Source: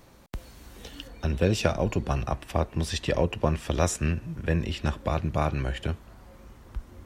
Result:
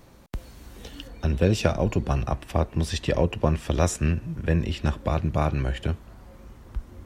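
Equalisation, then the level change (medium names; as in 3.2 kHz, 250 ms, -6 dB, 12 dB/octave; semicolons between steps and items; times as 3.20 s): bass shelf 480 Hz +3.5 dB; 0.0 dB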